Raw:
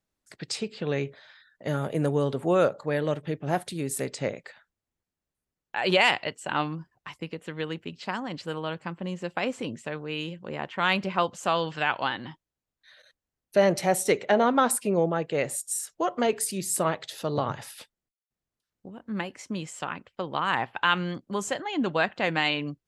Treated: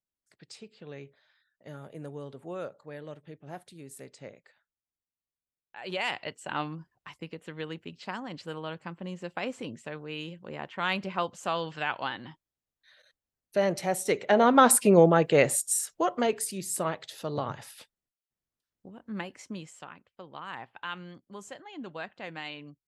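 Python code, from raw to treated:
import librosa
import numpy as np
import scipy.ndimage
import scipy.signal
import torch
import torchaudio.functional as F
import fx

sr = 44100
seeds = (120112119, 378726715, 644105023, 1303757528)

y = fx.gain(x, sr, db=fx.line((5.77, -15.5), (6.31, -5.0), (14.02, -5.0), (14.76, 6.0), (15.41, 6.0), (16.54, -4.5), (19.45, -4.5), (19.96, -14.0)))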